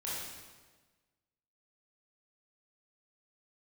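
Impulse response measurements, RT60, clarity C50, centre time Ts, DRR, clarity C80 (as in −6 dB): 1.4 s, −2.0 dB, 97 ms, −8.0 dB, 1.0 dB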